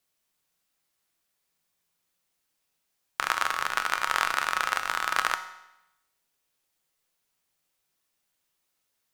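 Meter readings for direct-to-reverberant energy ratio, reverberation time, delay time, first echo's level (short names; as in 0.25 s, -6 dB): 7.5 dB, 0.90 s, none, none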